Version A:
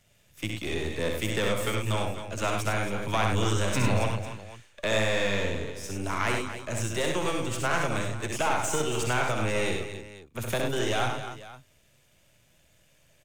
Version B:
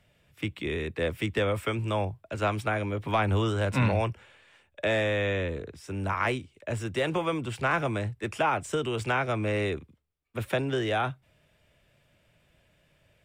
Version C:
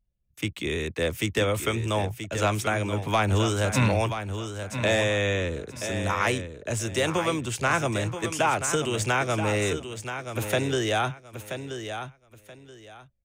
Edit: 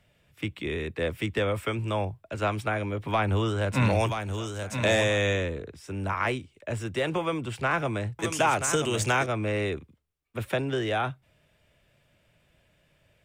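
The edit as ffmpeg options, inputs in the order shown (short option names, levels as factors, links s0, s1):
-filter_complex "[2:a]asplit=2[s0][s1];[1:a]asplit=3[s2][s3][s4];[s2]atrim=end=3.96[s5];[s0]atrim=start=3.72:end=5.55[s6];[s3]atrim=start=5.31:end=8.192[s7];[s1]atrim=start=8.188:end=9.262[s8];[s4]atrim=start=9.258[s9];[s5][s6]acrossfade=d=0.24:c1=tri:c2=tri[s10];[s10][s7]acrossfade=d=0.24:c1=tri:c2=tri[s11];[s11][s8]acrossfade=d=0.004:c1=hsin:c2=hsin[s12];[s12][s9]acrossfade=d=0.004:c1=hsin:c2=hsin"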